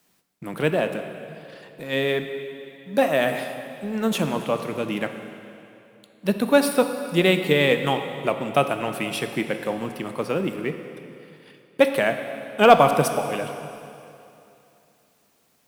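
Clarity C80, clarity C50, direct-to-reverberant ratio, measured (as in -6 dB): 9.0 dB, 8.0 dB, 7.0 dB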